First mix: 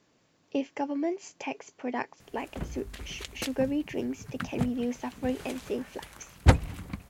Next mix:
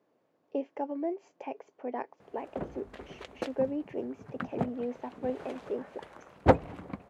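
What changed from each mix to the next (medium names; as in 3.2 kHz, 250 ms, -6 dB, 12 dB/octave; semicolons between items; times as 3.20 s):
background +7.0 dB; master: add band-pass filter 550 Hz, Q 1.1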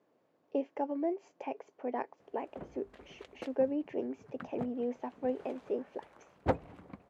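background -9.0 dB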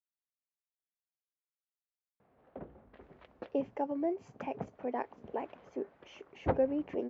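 speech: entry +3.00 s; background: add distance through air 330 m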